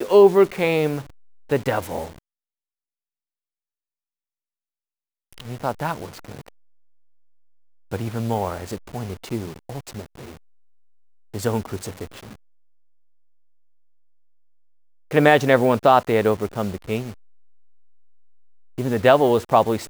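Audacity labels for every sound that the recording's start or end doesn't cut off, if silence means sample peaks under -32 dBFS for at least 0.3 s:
1.500000	2.100000	sound
5.330000	6.480000	sound
7.920000	10.310000	sound
11.340000	12.330000	sound
15.110000	17.120000	sound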